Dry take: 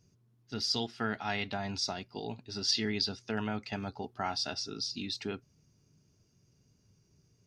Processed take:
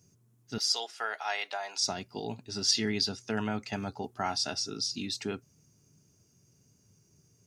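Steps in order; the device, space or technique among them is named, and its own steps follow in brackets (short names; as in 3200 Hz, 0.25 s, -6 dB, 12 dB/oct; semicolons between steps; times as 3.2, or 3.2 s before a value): budget condenser microphone (HPF 76 Hz; resonant high shelf 5700 Hz +7.5 dB, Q 1.5); 0.58–1.81 HPF 530 Hz 24 dB/oct; gain +2.5 dB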